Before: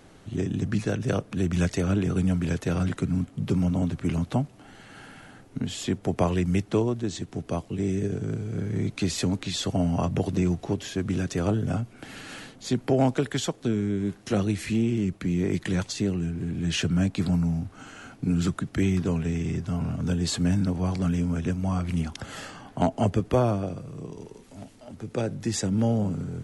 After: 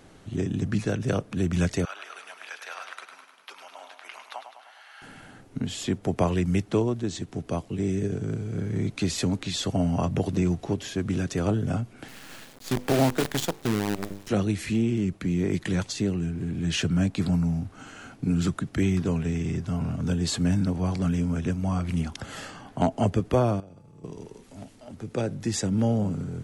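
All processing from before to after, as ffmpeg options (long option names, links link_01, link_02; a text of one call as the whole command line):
ffmpeg -i in.wav -filter_complex "[0:a]asettb=1/sr,asplit=3[link_01][link_02][link_03];[link_01]atrim=end=1.854[link_04];[link_02]atrim=start=1.85:end=5.02,asetpts=PTS-STARTPTS,afade=type=in:duration=0.004:curve=qsin,afade=type=out:start_time=3.166:duration=0.004:curve=qsin,highpass=frequency=840:width=0.5412,highpass=frequency=840:width=1.3066,equalizer=frequency=7700:width_type=o:width=0.53:gain=-12,aecho=1:1:103|206|309|412|515|618|721:0.398|0.235|0.139|0.0818|0.0482|0.0285|0.0168,atrim=end_sample=139797[link_05];[link_03]atrim=start=5.016[link_06];[link_04][link_05]acrossfade=duration=0.004:curve1=hsin:curve2=qsin[link_07];[link_07][link_06]acrossfade=duration=0.004:curve1=qsin:curve2=hsin,asettb=1/sr,asplit=3[link_08][link_09][link_10];[link_08]atrim=end=12.084[link_11];[link_09]atrim=start=12.08:end=14.29,asetpts=PTS-STARTPTS,afade=type=in:duration=0.004:curve=qsin,afade=type=out:start_time=2.206:duration=0.004:curve=qsin,bandreject=frequency=50:width_type=h:width=6,bandreject=frequency=100:width_type=h:width=6,bandreject=frequency=150:width_type=h:width=6,bandreject=frequency=200:width_type=h:width=6,bandreject=frequency=250:width_type=h:width=6,bandreject=frequency=300:width_type=h:width=6,bandreject=frequency=350:width_type=h:width=6,bandreject=frequency=400:width_type=h:width=6,bandreject=frequency=450:width_type=h:width=6,acrusher=bits=5:dc=4:mix=0:aa=0.000001[link_12];[link_10]atrim=start=14.286[link_13];[link_11][link_12]acrossfade=duration=0.004:curve1=hsin:curve2=qsin[link_14];[link_14][link_13]acrossfade=duration=0.004:curve1=qsin:curve2=hsin,asettb=1/sr,asplit=3[link_15][link_16][link_17];[link_15]atrim=end=23.604[link_18];[link_16]atrim=start=23.6:end=24.04,asetpts=PTS-STARTPTS,afade=type=in:duration=0.004:curve=qsin,afade=type=out:start_time=0.436:duration=0.004:curve=qsin,agate=range=-33dB:threshold=-31dB:ratio=3:release=100:detection=peak,acompressor=threshold=-45dB:ratio=5:attack=3.2:release=140:knee=1:detection=peak,aeval=exprs='val(0)+0.000501*sin(2*PI*860*n/s)':channel_layout=same[link_19];[link_17]atrim=start=24.036[link_20];[link_18][link_19]acrossfade=duration=0.004:curve1=hsin:curve2=qsin[link_21];[link_21][link_20]acrossfade=duration=0.004:curve1=qsin:curve2=hsin" out.wav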